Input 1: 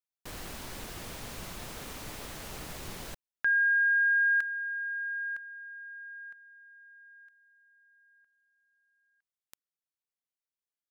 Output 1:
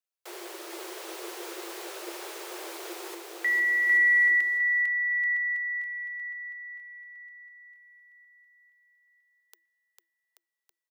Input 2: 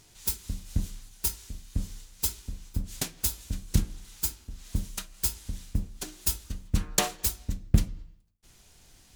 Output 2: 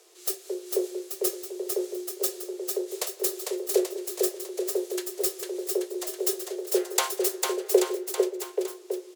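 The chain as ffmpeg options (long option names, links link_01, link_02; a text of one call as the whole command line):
ffmpeg -i in.wav -af "aecho=1:1:450|832.5|1158|1434|1669:0.631|0.398|0.251|0.158|0.1,afreqshift=330" out.wav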